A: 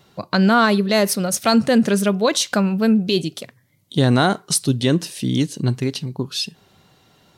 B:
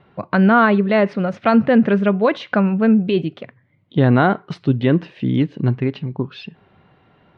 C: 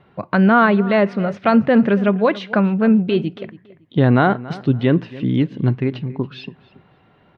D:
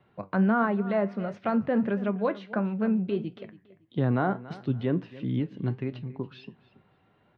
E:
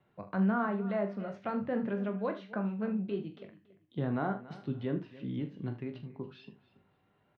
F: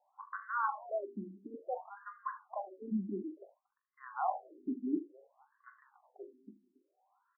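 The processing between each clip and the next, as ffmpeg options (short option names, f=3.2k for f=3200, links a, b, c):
-af "lowpass=f=2.5k:w=0.5412,lowpass=f=2.5k:w=1.3066,volume=2dB"
-filter_complex "[0:a]asplit=2[a][b];[b]adelay=280,lowpass=f=3.2k:p=1,volume=-18dB,asplit=2[c][d];[d]adelay=280,lowpass=f=3.2k:p=1,volume=0.26[e];[a][c][e]amix=inputs=3:normalize=0"
-filter_complex "[0:a]acrossover=split=170|1700[a][b][c];[c]acompressor=threshold=-38dB:ratio=6[d];[a][b][d]amix=inputs=3:normalize=0,flanger=delay=8.1:depth=2.8:regen=72:speed=1.5:shape=triangular,volume=-6.5dB"
-filter_complex "[0:a]asplit=2[a][b];[b]adelay=20,volume=-10.5dB[c];[a][c]amix=inputs=2:normalize=0,asplit=2[d][e];[e]aecho=0:1:42|77:0.299|0.188[f];[d][f]amix=inputs=2:normalize=0,volume=-7.5dB"
-af "highpass=f=160:w=0.5412,highpass=f=160:w=1.3066,equalizer=f=170:t=q:w=4:g=7,equalizer=f=310:t=q:w=4:g=6,equalizer=f=450:t=q:w=4:g=-9,equalizer=f=790:t=q:w=4:g=7,equalizer=f=1.1k:t=q:w=4:g=5,lowpass=f=2k:w=0.5412,lowpass=f=2k:w=1.3066,afftfilt=real='re*between(b*sr/1024,270*pow(1500/270,0.5+0.5*sin(2*PI*0.57*pts/sr))/1.41,270*pow(1500/270,0.5+0.5*sin(2*PI*0.57*pts/sr))*1.41)':imag='im*between(b*sr/1024,270*pow(1500/270,0.5+0.5*sin(2*PI*0.57*pts/sr))/1.41,270*pow(1500/270,0.5+0.5*sin(2*PI*0.57*pts/sr))*1.41)':win_size=1024:overlap=0.75,volume=-1dB"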